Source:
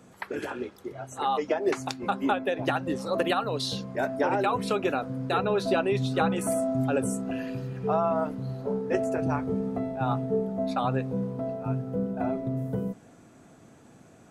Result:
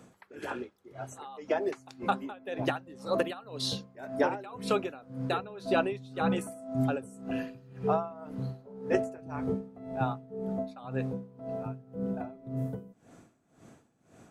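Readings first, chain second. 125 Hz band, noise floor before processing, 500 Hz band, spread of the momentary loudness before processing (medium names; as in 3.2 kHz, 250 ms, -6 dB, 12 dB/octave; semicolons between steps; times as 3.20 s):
-5.5 dB, -54 dBFS, -5.0 dB, 8 LU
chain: logarithmic tremolo 1.9 Hz, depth 20 dB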